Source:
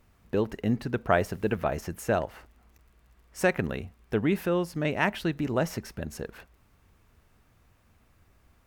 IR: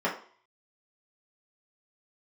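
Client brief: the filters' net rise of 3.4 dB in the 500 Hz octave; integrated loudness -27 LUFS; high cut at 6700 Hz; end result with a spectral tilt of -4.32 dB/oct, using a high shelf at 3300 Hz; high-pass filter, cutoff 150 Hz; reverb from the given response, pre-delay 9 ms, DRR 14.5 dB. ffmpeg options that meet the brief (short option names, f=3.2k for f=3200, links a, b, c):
-filter_complex "[0:a]highpass=150,lowpass=6.7k,equalizer=f=500:t=o:g=4,highshelf=f=3.3k:g=9,asplit=2[a][b];[1:a]atrim=start_sample=2205,adelay=9[c];[b][c]afir=irnorm=-1:irlink=0,volume=-26dB[d];[a][d]amix=inputs=2:normalize=0"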